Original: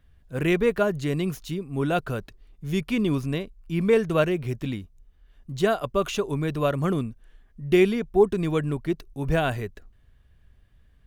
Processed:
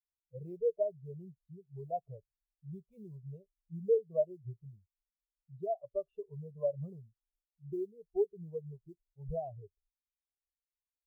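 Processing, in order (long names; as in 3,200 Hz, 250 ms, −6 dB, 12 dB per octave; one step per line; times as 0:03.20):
low-pass filter 1,200 Hz 6 dB per octave
low-shelf EQ 76 Hz −7.5 dB
downward compressor 2.5 to 1, threshold −27 dBFS, peak gain reduction 9.5 dB
noise that follows the level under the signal 11 dB
phaser with its sweep stopped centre 660 Hz, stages 4
on a send at −23.5 dB: convolution reverb RT60 0.45 s, pre-delay 3 ms
on the sum: every bin expanded away from the loudest bin 2.5 to 1
level −2.5 dB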